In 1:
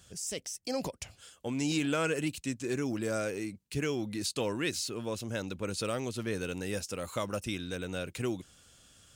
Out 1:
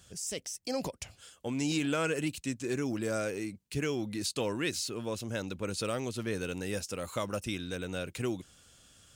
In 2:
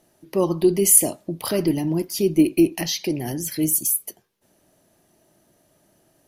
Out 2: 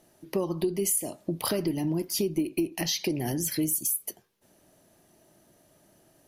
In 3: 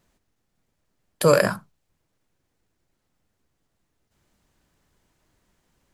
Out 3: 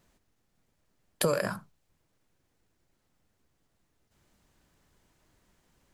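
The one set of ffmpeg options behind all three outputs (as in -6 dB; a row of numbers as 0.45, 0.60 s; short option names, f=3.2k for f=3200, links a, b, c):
-af "acompressor=threshold=-24dB:ratio=10"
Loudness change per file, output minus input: 0.0, -8.5, -10.5 LU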